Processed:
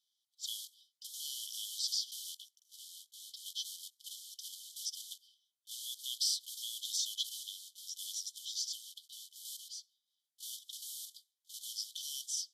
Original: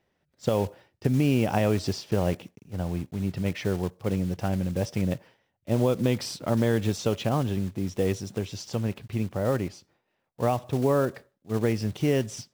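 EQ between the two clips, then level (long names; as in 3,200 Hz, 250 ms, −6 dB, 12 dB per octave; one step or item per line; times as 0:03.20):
linear-phase brick-wall high-pass 3,000 Hz
linear-phase brick-wall low-pass 14,000 Hz
+3.5 dB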